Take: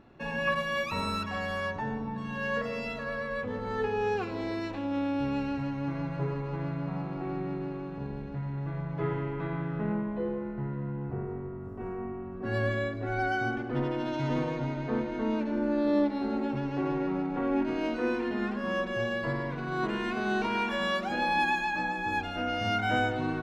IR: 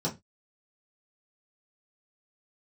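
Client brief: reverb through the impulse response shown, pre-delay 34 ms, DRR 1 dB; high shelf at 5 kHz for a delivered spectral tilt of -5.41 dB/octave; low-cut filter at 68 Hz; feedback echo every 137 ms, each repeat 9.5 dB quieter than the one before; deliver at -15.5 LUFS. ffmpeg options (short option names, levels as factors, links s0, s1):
-filter_complex "[0:a]highpass=68,highshelf=f=5000:g=-9,aecho=1:1:137|274|411|548:0.335|0.111|0.0365|0.012,asplit=2[s0][s1];[1:a]atrim=start_sample=2205,adelay=34[s2];[s1][s2]afir=irnorm=-1:irlink=0,volume=0.422[s3];[s0][s3]amix=inputs=2:normalize=0,volume=3.16"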